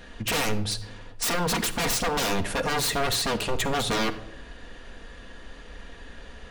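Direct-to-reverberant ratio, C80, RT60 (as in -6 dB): 6.0 dB, 17.0 dB, 0.90 s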